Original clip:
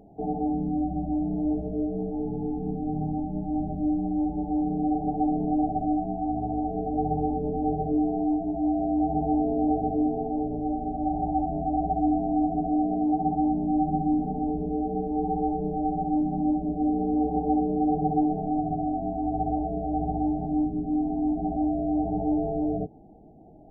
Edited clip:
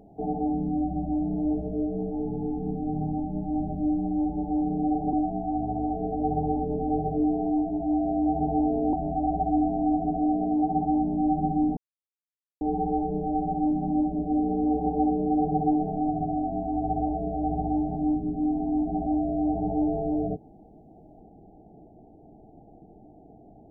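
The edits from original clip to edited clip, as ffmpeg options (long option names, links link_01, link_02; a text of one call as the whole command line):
ffmpeg -i in.wav -filter_complex "[0:a]asplit=5[link_01][link_02][link_03][link_04][link_05];[link_01]atrim=end=5.132[link_06];[link_02]atrim=start=5.868:end=9.672[link_07];[link_03]atrim=start=11.428:end=14.27,asetpts=PTS-STARTPTS,afade=type=out:start_time=2.838:duration=0.004:curve=hsin[link_08];[link_04]atrim=start=14.27:end=15.11,asetpts=PTS-STARTPTS,volume=0[link_09];[link_05]atrim=start=15.11,asetpts=PTS-STARTPTS,afade=type=in:duration=0.004:curve=hsin[link_10];[link_06][link_07]acrossfade=duration=0.004:curve1=hsin:curve2=hsin[link_11];[link_08][link_09][link_10]concat=n=3:v=0:a=1[link_12];[link_11][link_12]acrossfade=duration=0.004:curve1=hsin:curve2=hsin" out.wav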